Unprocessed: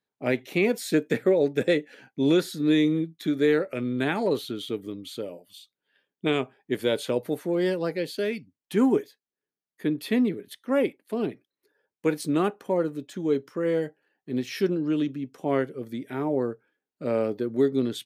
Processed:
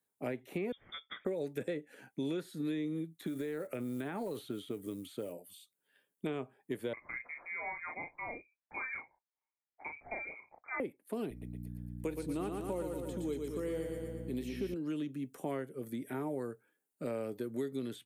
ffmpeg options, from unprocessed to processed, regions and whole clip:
-filter_complex "[0:a]asettb=1/sr,asplit=3[a][b][c];[a]atrim=end=0.724[d];[b]atrim=start=0.72:end=1.25,asetpts=PTS-STARTPTS,afade=t=in:d=0.004:c=qsin,afade=t=out:st=0.526:d=0.004:c=qsin,highpass=f=270:p=1,highshelf=f=2.3k:g=-6,lowpass=f=3.2k:t=q:w=0.5098,lowpass=f=3.2k:t=q:w=0.6013,lowpass=f=3.2k:t=q:w=0.9,lowpass=f=3.2k:t=q:w=2.563,afreqshift=-3800[e];[c]atrim=start=1.246[f];[d][e]acrossfade=d=0.004:c1=hsin:c2=qsin[g];[g][f]acrossfade=d=0.004:c1=qsin:c2=hsin,asettb=1/sr,asplit=3[h][i][j];[h]atrim=end=3.204[k];[i]atrim=start=3.2:end=5.33,asetpts=PTS-STARTPTS,afade=t=in:d=0.004:c=qsin,afade=t=out:st=2.126:d=0.004:c=qsin,acompressor=threshold=-25dB:ratio=10:attack=3.2:release=140:knee=1:detection=peak,acrusher=bits=8:mode=log:mix=0:aa=0.000001[l];[j]atrim=start=5.326[m];[k][l]acrossfade=d=0.004:c1=hsin:c2=qsin[n];[n][m]acrossfade=d=0.004:c1=qsin:c2=hsin,asettb=1/sr,asplit=3[o][p][q];[o]atrim=end=6.934[r];[p]atrim=start=6.93:end=10.8,asetpts=PTS-STARTPTS,afade=t=in:d=0.004:c=qsin,afade=t=out:st=3.866:d=0.004:c=qsin,lowshelf=f=500:g=-10.5,asplit=2[s][t];[t]adelay=35,volume=-5dB[u];[s][u]amix=inputs=2:normalize=0,atrim=end_sample=170667,lowpass=f=2.2k:t=q:w=0.5098,lowpass=f=2.2k:t=q:w=0.6013,lowpass=f=2.2k:t=q:w=0.9,lowpass=f=2.2k:t=q:w=2.563,afreqshift=-2600[v];[q]atrim=start=10.796[w];[r][v]acrossfade=d=0.004:c1=hsin:c2=qsin[x];[x][w]acrossfade=d=0.004:c1=qsin:c2=hsin,asettb=1/sr,asplit=3[y][z][aa];[y]atrim=end=11.304[ab];[z]atrim=start=11.3:end=14.74,asetpts=PTS-STARTPTS,afade=t=in:d=0.004:c=qsin,afade=t=out:st=3.436:d=0.004:c=qsin,equalizer=f=1.6k:w=1.9:g=-7,aeval=exprs='val(0)+0.0141*(sin(2*PI*60*n/s)+sin(2*PI*2*60*n/s)/2+sin(2*PI*3*60*n/s)/3+sin(2*PI*4*60*n/s)/4+sin(2*PI*5*60*n/s)/5)':c=same,aecho=1:1:116|232|348|464|580|696|812:0.531|0.287|0.155|0.0836|0.0451|0.0244|0.0132,atrim=end_sample=151704[ac];[aa]atrim=start=14.736[ad];[ab][ac]acrossfade=d=0.004:c1=hsin:c2=qsin[ae];[ae][ad]acrossfade=d=0.004:c1=qsin:c2=hsin,acrossover=split=4700[af][ag];[ag]acompressor=threshold=-58dB:ratio=4:attack=1:release=60[ah];[af][ah]amix=inputs=2:normalize=0,highshelf=f=6.8k:t=q:w=1.5:g=11,acrossover=split=120|1600[ai][aj][ak];[ai]acompressor=threshold=-52dB:ratio=4[al];[aj]acompressor=threshold=-34dB:ratio=4[am];[ak]acompressor=threshold=-51dB:ratio=4[an];[al][am][an]amix=inputs=3:normalize=0,volume=-2.5dB"

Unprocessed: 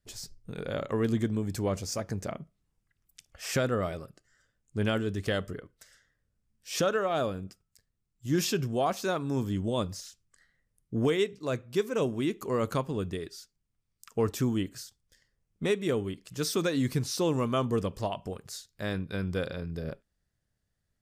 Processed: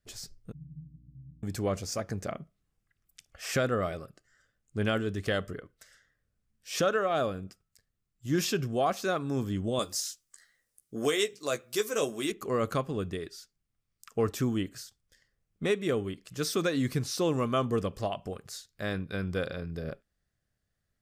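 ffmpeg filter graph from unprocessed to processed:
-filter_complex "[0:a]asettb=1/sr,asplit=3[a][b][c];[a]atrim=end=0.524[d];[b]atrim=start=0.52:end=1.43,asetpts=PTS-STARTPTS,afade=t=in:d=0.004:c=qsin,afade=t=out:st=0.906:d=0.004:c=qsin,asuperpass=centerf=150:order=12:qfactor=3.5,aeval=exprs='val(0)+0.00158*(sin(2*PI*60*n/s)+sin(2*PI*2*60*n/s)/2+sin(2*PI*3*60*n/s)/3+sin(2*PI*4*60*n/s)/4+sin(2*PI*5*60*n/s)/5)':c=same[e];[c]atrim=start=1.426[f];[d][e]acrossfade=d=0.004:c1=hsin:c2=qsin[g];[g][f]acrossfade=d=0.004:c1=qsin:c2=hsin,asettb=1/sr,asplit=3[h][i][j];[h]atrim=end=9.794[k];[i]atrim=start=9.79:end=12.32,asetpts=PTS-STARTPTS,afade=t=in:d=0.004:c=qsin,afade=t=out:st=2.526:d=0.004:c=qsin,bass=f=250:g=-12,treble=f=4k:g=13,asplit=2[l][m];[m]adelay=14,volume=-7.5dB[n];[l][n]amix=inputs=2:normalize=0,atrim=end_sample=111573[o];[j]atrim=start=12.316[p];[k][o]acrossfade=d=0.004:c1=hsin:c2=qsin[q];[q][p]acrossfade=d=0.004:c1=qsin:c2=hsin,equalizer=f=1.2k:w=0.52:g=3.5,bandreject=f=930:w=6.9,volume=-1.5dB"

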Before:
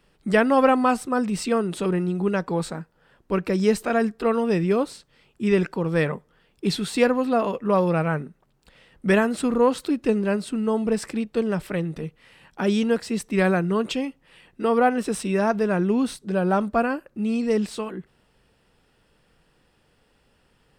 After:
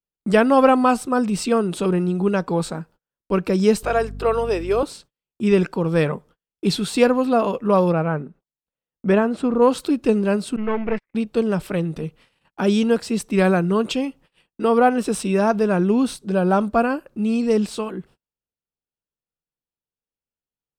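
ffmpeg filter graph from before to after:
-filter_complex "[0:a]asettb=1/sr,asplit=3[a][b][c];[a]atrim=end=3.834[d];[b]atrim=start=3.83:end=4.83,asetpts=PTS-STARTPTS,afade=t=in:d=0.004:c=qsin,afade=t=out:st=0.996:d=0.004:c=qsin,highpass=f=360:w=0.5412,highpass=f=360:w=1.3066,aeval=exprs='val(0)+0.0178*(sin(2*PI*50*n/s)+sin(2*PI*2*50*n/s)/2+sin(2*PI*3*50*n/s)/3+sin(2*PI*4*50*n/s)/4+sin(2*PI*5*50*n/s)/5)':c=same[e];[c]atrim=start=4.826[f];[d][e]acrossfade=d=0.004:c1=hsin:c2=qsin[g];[g][f]acrossfade=d=0.004:c1=qsin:c2=hsin,asettb=1/sr,asplit=3[h][i][j];[h]atrim=end=7.924[k];[i]atrim=start=7.92:end=9.62,asetpts=PTS-STARTPTS,afade=t=in:d=0.004:c=qsin,afade=t=out:st=1.696:d=0.004:c=qsin,lowpass=f=1.5k:p=1,lowshelf=f=120:g=-5.5[l];[j]atrim=start=9.616[m];[k][l]acrossfade=d=0.004:c1=hsin:c2=qsin[n];[n][m]acrossfade=d=0.004:c1=qsin:c2=hsin,asettb=1/sr,asplit=3[o][p][q];[o]atrim=end=10.564[r];[p]atrim=start=10.56:end=11.15,asetpts=PTS-STARTPTS,afade=t=in:d=0.004:c=qsin,afade=t=out:st=0.586:d=0.004:c=qsin,aeval=exprs='if(lt(val(0),0),0.251*val(0),val(0))':c=same,agate=range=-44dB:threshold=-30dB:ratio=16:release=100:detection=peak,lowpass=f=2.1k:t=q:w=5.8[s];[q]atrim=start=11.146[t];[r][s]acrossfade=d=0.004:c1=hsin:c2=qsin[u];[u][t]acrossfade=d=0.004:c1=qsin:c2=hsin,agate=range=-39dB:threshold=-49dB:ratio=16:detection=peak,equalizer=f=1.9k:w=3.7:g=-6.5,volume=3.5dB"

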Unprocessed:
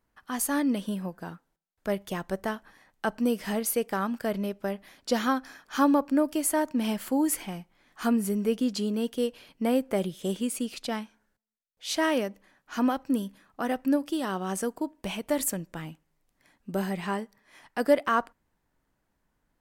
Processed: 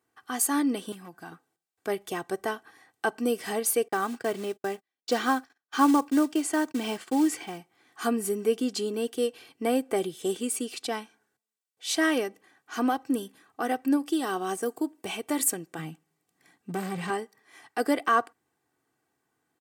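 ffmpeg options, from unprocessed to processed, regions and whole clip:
-filter_complex "[0:a]asettb=1/sr,asplit=3[a][b][c];[a]atrim=end=0.924[d];[b]atrim=start=0.92:end=1.32,asetpts=PTS-STARTPTS,afade=t=in:d=0.004:c=qsin,afade=t=out:st=0.396:d=0.004:c=qsin,equalizer=f=460:w=2.9:g=-14,acompressor=threshold=-41dB:ratio=1.5:attack=3.2:release=140:knee=1:detection=peak,aeval=exprs='0.0224*(abs(mod(val(0)/0.0224+3,4)-2)-1)':c=same[e];[c]atrim=start=1.316[f];[d][e]acrossfade=d=0.004:c1=hsin:c2=qsin[g];[g][f]acrossfade=d=0.004:c1=qsin:c2=hsin,asettb=1/sr,asplit=3[h][i][j];[h]atrim=end=3.884[k];[i]atrim=start=3.88:end=7.58,asetpts=PTS-STARTPTS,afade=t=in:d=0.004:c=qsin,afade=t=out:st=3.696:d=0.004:c=qsin,lowpass=5.9k,acrusher=bits=5:mode=log:mix=0:aa=0.000001,agate=range=-38dB:threshold=-45dB:ratio=16:release=100:detection=peak[l];[j]atrim=start=7.576[m];[k][l]acrossfade=d=0.004:c1=hsin:c2=qsin[n];[n][m]acrossfade=d=0.004:c1=qsin:c2=hsin,asettb=1/sr,asplit=3[o][p][q];[o]atrim=end=14.244[r];[p]atrim=start=14.24:end=15.06,asetpts=PTS-STARTPTS,afade=t=in:d=0.004:c=qsin,afade=t=out:st=0.816:d=0.004:c=qsin,highshelf=f=6.6k:g=6.5,deesser=0.9[s];[q]atrim=start=15.056[t];[r][s]acrossfade=d=0.004:c1=hsin:c2=qsin[u];[u][t]acrossfade=d=0.004:c1=qsin:c2=hsin,asettb=1/sr,asplit=3[v][w][x];[v]atrim=end=15.784[y];[w]atrim=start=15.78:end=17.1,asetpts=PTS-STARTPTS,afade=t=in:d=0.004:c=qsin,afade=t=out:st=1.316:d=0.004:c=qsin,equalizer=f=180:t=o:w=0.36:g=12.5,volume=24dB,asoftclip=hard,volume=-24dB[z];[x]atrim=start=17.096[aa];[y][z]acrossfade=d=0.004:c1=hsin:c2=qsin[ab];[ab][aa]acrossfade=d=0.004:c1=qsin:c2=hsin,highpass=f=120:w=0.5412,highpass=f=120:w=1.3066,equalizer=f=8.3k:w=3.2:g=5.5,aecho=1:1:2.6:0.65"

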